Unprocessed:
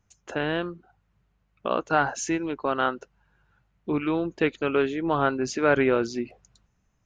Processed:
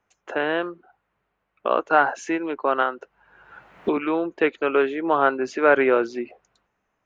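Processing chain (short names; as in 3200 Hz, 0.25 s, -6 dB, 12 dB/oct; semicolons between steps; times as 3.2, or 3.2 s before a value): three-band isolator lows -20 dB, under 300 Hz, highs -15 dB, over 2900 Hz; 2.82–3.97 three-band squash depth 100%; gain +5.5 dB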